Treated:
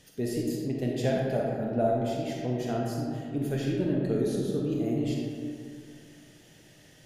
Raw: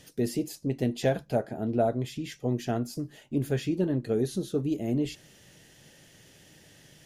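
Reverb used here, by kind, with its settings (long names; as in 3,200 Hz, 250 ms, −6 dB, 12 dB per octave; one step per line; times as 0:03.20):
comb and all-pass reverb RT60 2.3 s, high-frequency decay 0.45×, pre-delay 5 ms, DRR −2 dB
level −4 dB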